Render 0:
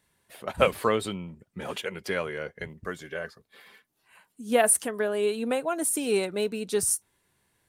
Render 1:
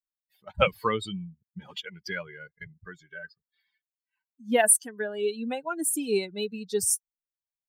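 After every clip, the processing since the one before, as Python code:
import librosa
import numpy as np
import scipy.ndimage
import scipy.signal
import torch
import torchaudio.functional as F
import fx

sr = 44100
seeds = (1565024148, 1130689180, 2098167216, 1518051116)

y = fx.bin_expand(x, sr, power=2.0)
y = fx.peak_eq(y, sr, hz=550.0, db=-3.5, octaves=2.2)
y = y * 10.0 ** (4.5 / 20.0)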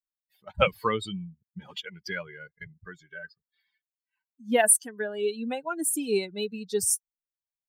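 y = x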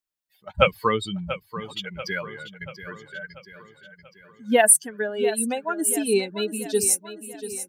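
y = fx.echo_feedback(x, sr, ms=687, feedback_pct=53, wet_db=-12.5)
y = y * 10.0 ** (4.5 / 20.0)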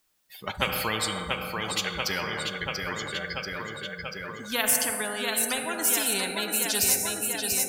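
y = fx.rev_fdn(x, sr, rt60_s=1.5, lf_ratio=1.2, hf_ratio=0.5, size_ms=12.0, drr_db=11.5)
y = fx.spectral_comp(y, sr, ratio=4.0)
y = y * 10.0 ** (-7.0 / 20.0)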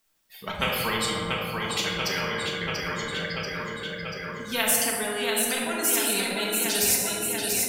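y = fx.room_shoebox(x, sr, seeds[0], volume_m3=560.0, walls='mixed', distance_m=1.6)
y = y * 10.0 ** (-2.0 / 20.0)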